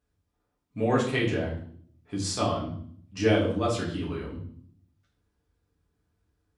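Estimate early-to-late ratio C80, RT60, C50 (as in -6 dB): 9.5 dB, 0.55 s, 6.0 dB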